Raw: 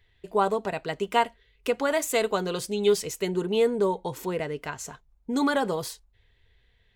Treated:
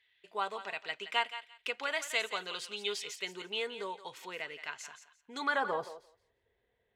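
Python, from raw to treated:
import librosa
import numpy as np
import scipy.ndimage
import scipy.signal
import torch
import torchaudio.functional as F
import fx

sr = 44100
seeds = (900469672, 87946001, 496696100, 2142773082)

y = fx.echo_thinned(x, sr, ms=172, feedback_pct=20, hz=880.0, wet_db=-10.5)
y = fx.filter_sweep_bandpass(y, sr, from_hz=2700.0, to_hz=530.0, start_s=5.35, end_s=6.01, q=1.2)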